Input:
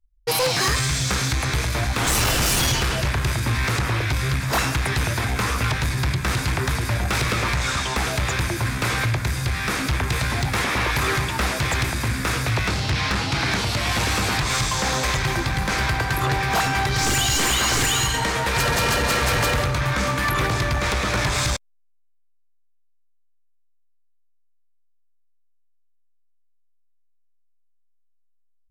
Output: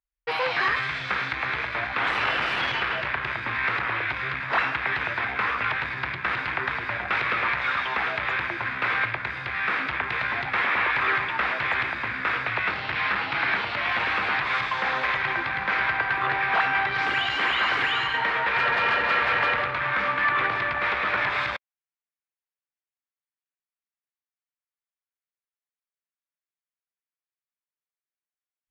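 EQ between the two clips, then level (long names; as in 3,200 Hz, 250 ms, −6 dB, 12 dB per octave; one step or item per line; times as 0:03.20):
resonant band-pass 2,000 Hz, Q 0.94
high-frequency loss of the air 410 metres
+6.0 dB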